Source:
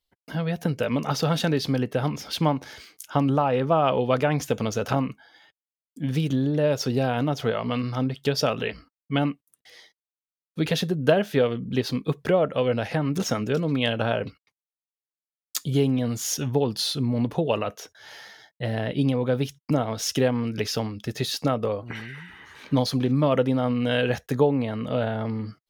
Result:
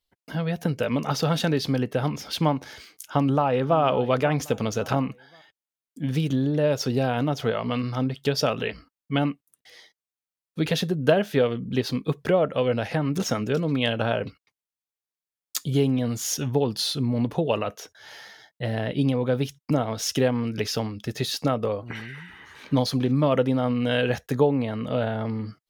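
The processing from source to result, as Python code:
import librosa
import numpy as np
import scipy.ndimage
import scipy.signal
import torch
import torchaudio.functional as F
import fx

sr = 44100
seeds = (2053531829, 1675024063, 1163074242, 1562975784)

y = fx.echo_throw(x, sr, start_s=3.07, length_s=0.72, ms=540, feedback_pct=35, wet_db=-15.5)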